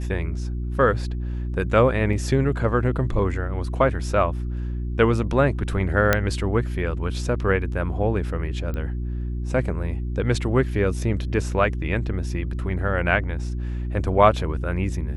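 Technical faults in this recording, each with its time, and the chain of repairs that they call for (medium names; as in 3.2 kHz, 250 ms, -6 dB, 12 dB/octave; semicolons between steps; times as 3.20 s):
hum 60 Hz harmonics 6 -27 dBFS
2.13 s: dropout 2.3 ms
6.13 s: pop -3 dBFS
8.74 s: pop -19 dBFS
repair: de-click; de-hum 60 Hz, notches 6; interpolate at 2.13 s, 2.3 ms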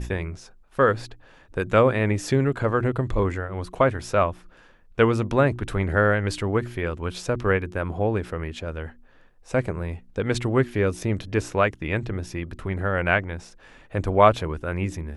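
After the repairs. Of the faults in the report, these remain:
nothing left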